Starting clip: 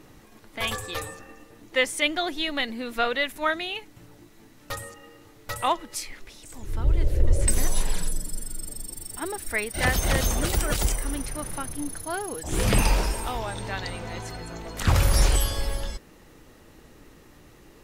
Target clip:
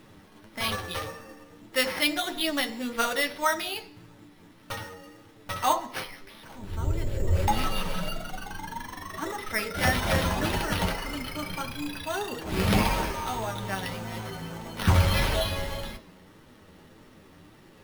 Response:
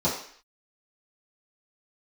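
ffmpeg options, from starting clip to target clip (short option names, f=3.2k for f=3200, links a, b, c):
-filter_complex "[0:a]acrusher=samples=6:mix=1:aa=0.000001,asplit=2[a][b];[1:a]atrim=start_sample=2205[c];[b][c]afir=irnorm=-1:irlink=0,volume=-19.5dB[d];[a][d]amix=inputs=2:normalize=0,flanger=delay=8.4:depth=2.5:regen=38:speed=1.7:shape=sinusoidal,lowshelf=f=67:g=-10.5,volume=3dB"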